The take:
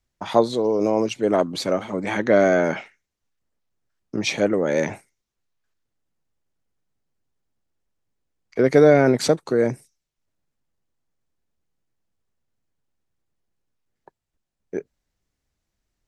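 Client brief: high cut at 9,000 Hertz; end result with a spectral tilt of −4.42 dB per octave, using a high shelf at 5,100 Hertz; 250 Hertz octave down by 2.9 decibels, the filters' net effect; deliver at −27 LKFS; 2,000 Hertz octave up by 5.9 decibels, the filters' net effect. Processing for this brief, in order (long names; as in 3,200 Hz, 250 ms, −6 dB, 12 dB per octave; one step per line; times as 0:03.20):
low-pass filter 9,000 Hz
parametric band 250 Hz −4 dB
parametric band 2,000 Hz +7 dB
high-shelf EQ 5,100 Hz +5.5 dB
level −7 dB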